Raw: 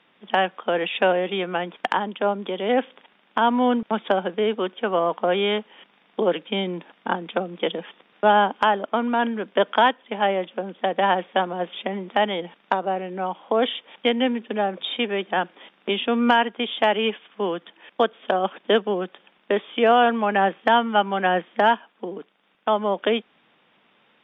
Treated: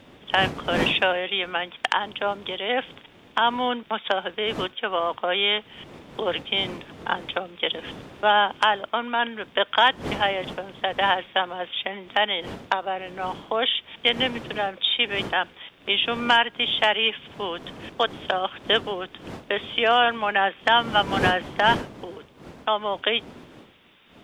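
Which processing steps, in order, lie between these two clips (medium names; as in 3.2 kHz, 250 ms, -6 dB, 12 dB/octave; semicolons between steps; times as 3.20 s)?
wind noise 240 Hz -27 dBFS; tilt EQ +4.5 dB/octave; trim -1 dB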